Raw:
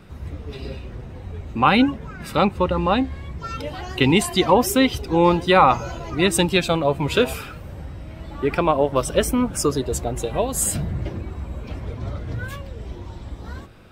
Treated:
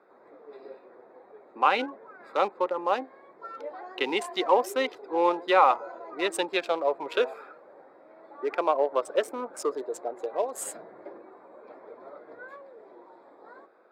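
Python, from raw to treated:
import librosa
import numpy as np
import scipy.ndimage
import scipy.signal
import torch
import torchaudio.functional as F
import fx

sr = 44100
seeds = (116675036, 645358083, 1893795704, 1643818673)

y = fx.wiener(x, sr, points=15)
y = scipy.signal.sosfilt(scipy.signal.butter(4, 410.0, 'highpass', fs=sr, output='sos'), y)
y = fx.high_shelf(y, sr, hz=3700.0, db=-10.0)
y = y * librosa.db_to_amplitude(-4.0)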